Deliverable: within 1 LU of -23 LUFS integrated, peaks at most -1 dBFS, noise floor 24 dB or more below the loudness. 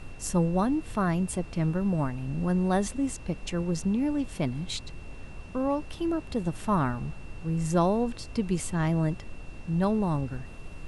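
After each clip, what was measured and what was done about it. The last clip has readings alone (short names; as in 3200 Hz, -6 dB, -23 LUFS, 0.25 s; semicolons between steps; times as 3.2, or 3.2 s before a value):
steady tone 2700 Hz; tone level -53 dBFS; noise floor -43 dBFS; noise floor target -53 dBFS; loudness -29.0 LUFS; peak -12.5 dBFS; loudness target -23.0 LUFS
-> notch 2700 Hz, Q 30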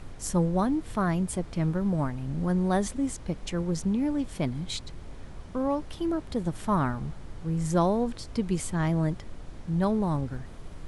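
steady tone none; noise floor -43 dBFS; noise floor target -53 dBFS
-> noise print and reduce 10 dB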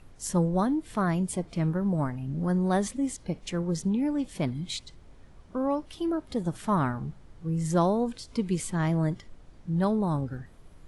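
noise floor -52 dBFS; noise floor target -53 dBFS
-> noise print and reduce 6 dB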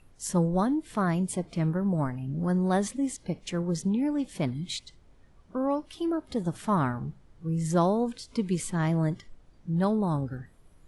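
noise floor -57 dBFS; loudness -29.0 LUFS; peak -13.0 dBFS; loudness target -23.0 LUFS
-> gain +6 dB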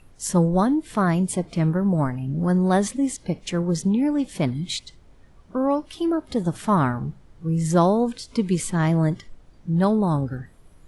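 loudness -23.0 LUFS; peak -7.0 dBFS; noise floor -51 dBFS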